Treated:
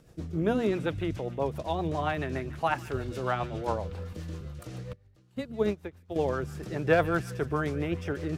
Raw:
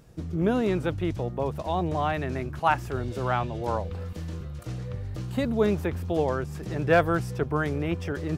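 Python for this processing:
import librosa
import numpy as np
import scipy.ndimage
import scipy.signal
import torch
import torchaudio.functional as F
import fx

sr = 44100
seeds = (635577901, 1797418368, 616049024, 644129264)

y = fx.low_shelf(x, sr, hz=260.0, db=-3.5)
y = fx.hum_notches(y, sr, base_hz=60, count=4)
y = fx.rotary(y, sr, hz=7.5)
y = fx.echo_wet_highpass(y, sr, ms=147, feedback_pct=57, hz=1800.0, wet_db=-14)
y = fx.upward_expand(y, sr, threshold_db=-38.0, expansion=2.5, at=(4.93, 6.16))
y = F.gain(torch.from_numpy(y), 1.0).numpy()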